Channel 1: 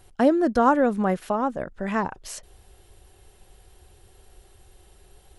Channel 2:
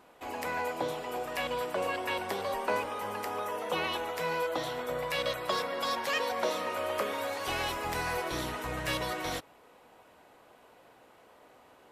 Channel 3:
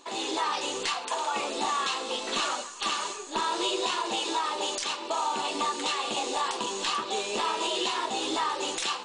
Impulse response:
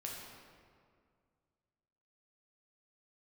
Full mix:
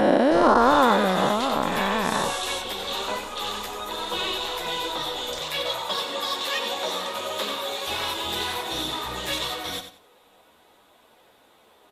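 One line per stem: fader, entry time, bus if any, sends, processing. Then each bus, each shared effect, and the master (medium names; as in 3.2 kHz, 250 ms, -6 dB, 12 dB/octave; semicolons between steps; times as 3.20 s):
-5.5 dB, 0.00 s, no send, no echo send, every event in the spectrogram widened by 480 ms
+3.0 dB, 0.40 s, no send, echo send -10 dB, treble shelf 6.7 kHz +7.5 dB; three-phase chorus
-7.5 dB, 0.55 s, no send, echo send -4 dB, none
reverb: none
echo: feedback delay 92 ms, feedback 23%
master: peaking EQ 3.6 kHz +11.5 dB 0.28 oct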